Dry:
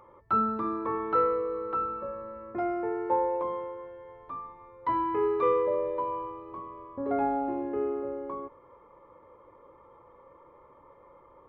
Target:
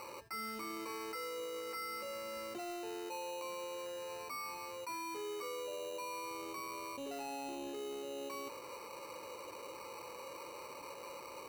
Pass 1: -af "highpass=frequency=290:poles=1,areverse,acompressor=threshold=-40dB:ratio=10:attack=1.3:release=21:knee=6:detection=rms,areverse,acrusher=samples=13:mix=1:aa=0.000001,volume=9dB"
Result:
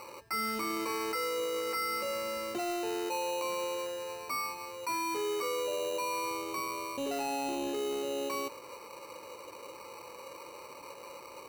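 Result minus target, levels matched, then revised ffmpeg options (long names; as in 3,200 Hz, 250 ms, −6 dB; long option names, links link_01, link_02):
downward compressor: peak gain reduction −9 dB
-af "highpass=frequency=290:poles=1,areverse,acompressor=threshold=-50dB:ratio=10:attack=1.3:release=21:knee=6:detection=rms,areverse,acrusher=samples=13:mix=1:aa=0.000001,volume=9dB"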